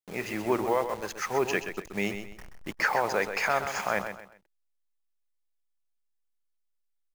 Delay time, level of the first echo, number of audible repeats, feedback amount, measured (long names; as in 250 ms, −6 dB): 129 ms, −9.0 dB, 3, 30%